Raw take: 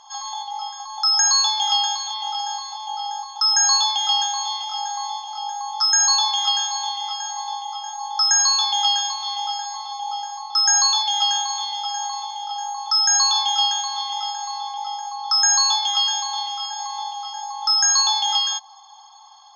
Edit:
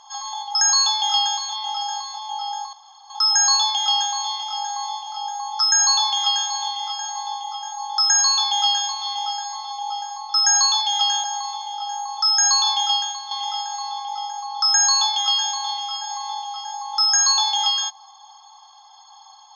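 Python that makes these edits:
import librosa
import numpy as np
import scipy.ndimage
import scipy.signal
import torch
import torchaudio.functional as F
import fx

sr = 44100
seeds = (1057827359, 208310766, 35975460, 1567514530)

y = fx.edit(x, sr, fx.cut(start_s=0.55, length_s=0.58),
    fx.insert_room_tone(at_s=3.31, length_s=0.37),
    fx.cut(start_s=11.45, length_s=0.48),
    fx.fade_out_to(start_s=13.52, length_s=0.48, floor_db=-8.5), tone=tone)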